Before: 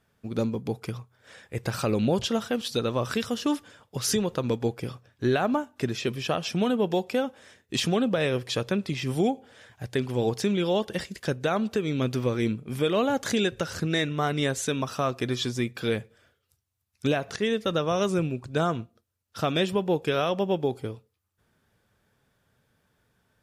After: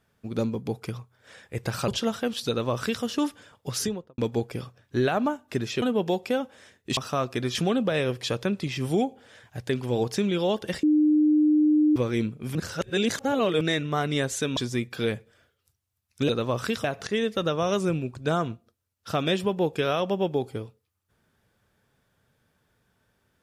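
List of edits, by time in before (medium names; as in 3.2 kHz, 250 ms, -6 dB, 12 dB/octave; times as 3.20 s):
1.88–2.16 s: delete
2.76–3.31 s: copy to 17.13 s
3.99–4.46 s: studio fade out
6.10–6.66 s: delete
11.09–12.22 s: bleep 303 Hz -16.5 dBFS
12.81–13.87 s: reverse
14.83–15.41 s: move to 7.81 s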